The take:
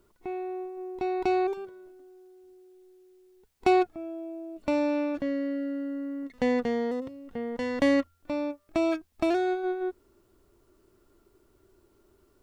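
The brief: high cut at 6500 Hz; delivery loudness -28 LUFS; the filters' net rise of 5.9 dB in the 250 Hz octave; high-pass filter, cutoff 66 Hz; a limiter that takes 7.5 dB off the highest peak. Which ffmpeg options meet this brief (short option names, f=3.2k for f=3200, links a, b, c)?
-af "highpass=66,lowpass=6.5k,equalizer=f=250:t=o:g=7.5,volume=-1dB,alimiter=limit=-18dB:level=0:latency=1"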